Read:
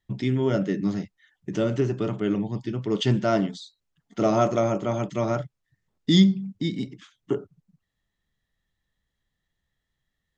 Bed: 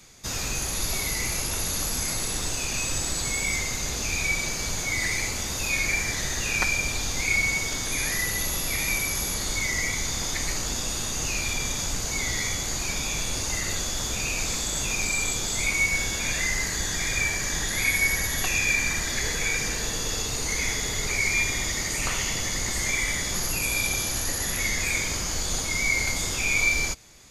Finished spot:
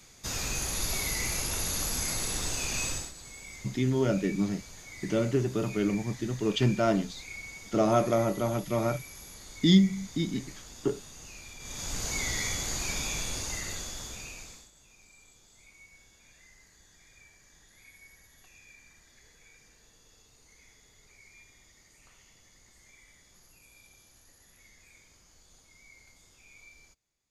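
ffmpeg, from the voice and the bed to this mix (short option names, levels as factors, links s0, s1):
-filter_complex "[0:a]adelay=3550,volume=0.708[s0];[1:a]volume=3.76,afade=t=out:st=2.86:d=0.26:silence=0.16788,afade=t=in:st=11.59:d=0.46:silence=0.177828,afade=t=out:st=13:d=1.71:silence=0.0398107[s1];[s0][s1]amix=inputs=2:normalize=0"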